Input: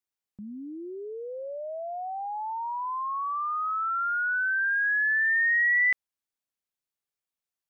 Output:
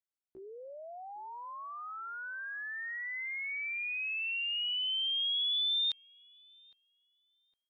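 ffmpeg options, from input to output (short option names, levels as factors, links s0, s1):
-filter_complex "[0:a]asetrate=80880,aresample=44100,atempo=0.545254,asplit=2[s0][s1];[s1]adelay=810,lowpass=f=1300:p=1,volume=0.1,asplit=2[s2][s3];[s3]adelay=810,lowpass=f=1300:p=1,volume=0.46,asplit=2[s4][s5];[s5]adelay=810,lowpass=f=1300:p=1,volume=0.46[s6];[s0][s2][s4][s6]amix=inputs=4:normalize=0,volume=0.398"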